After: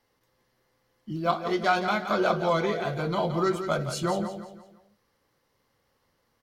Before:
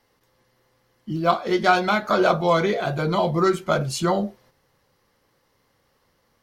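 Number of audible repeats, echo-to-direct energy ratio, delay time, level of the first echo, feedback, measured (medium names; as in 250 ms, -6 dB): 4, -9.0 dB, 171 ms, -9.5 dB, 38%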